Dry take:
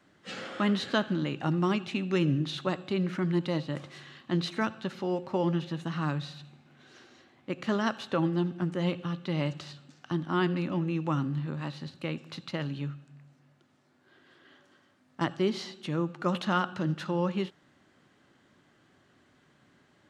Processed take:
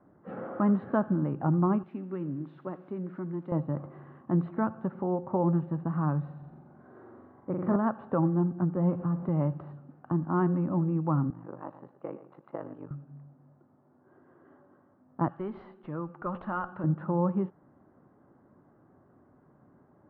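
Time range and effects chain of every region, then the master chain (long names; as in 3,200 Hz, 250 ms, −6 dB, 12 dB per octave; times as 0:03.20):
0:01.83–0:03.52: spike at every zero crossing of −27 dBFS + high-pass filter 280 Hz + parametric band 700 Hz −11.5 dB 2.7 octaves
0:06.38–0:07.76: parametric band 2,700 Hz −6.5 dB 0.43 octaves + mains-hum notches 50/100/150/200/250/300/350/400 Hz + flutter between parallel walls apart 7.5 metres, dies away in 1.1 s
0:08.76–0:09.29: converter with a step at zero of −39.5 dBFS + high-pass filter 63 Hz + high-frequency loss of the air 230 metres
0:11.30–0:12.91: band-pass filter 410–3,800 Hz + ring modulation 25 Hz + single-tap delay 116 ms −14 dB
0:15.28–0:16.84: tilt shelving filter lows −9.5 dB, about 1,300 Hz + tube saturation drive 20 dB, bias 0.25
whole clip: low-pass filter 1,100 Hz 24 dB per octave; dynamic equaliser 410 Hz, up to −5 dB, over −39 dBFS, Q 0.9; level +4.5 dB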